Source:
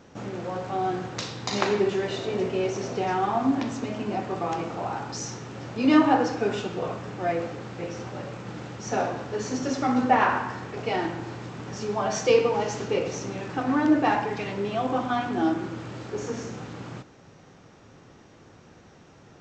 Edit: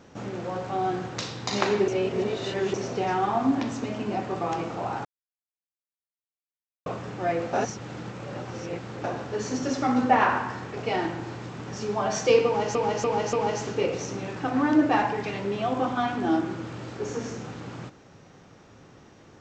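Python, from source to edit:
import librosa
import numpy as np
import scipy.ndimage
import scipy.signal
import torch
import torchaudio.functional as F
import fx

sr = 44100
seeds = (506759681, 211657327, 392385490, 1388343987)

y = fx.edit(x, sr, fx.reverse_span(start_s=1.88, length_s=0.86),
    fx.silence(start_s=5.05, length_s=1.81),
    fx.reverse_span(start_s=7.53, length_s=1.51),
    fx.repeat(start_s=12.46, length_s=0.29, count=4), tone=tone)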